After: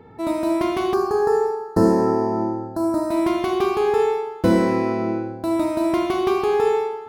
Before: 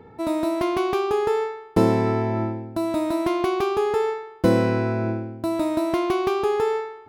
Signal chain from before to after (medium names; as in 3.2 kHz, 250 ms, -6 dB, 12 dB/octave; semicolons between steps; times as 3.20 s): reverberation RT60 1.0 s, pre-delay 31 ms, DRR 3 dB; time-frequency box 0.94–3.10 s, 1.9–4 kHz -20 dB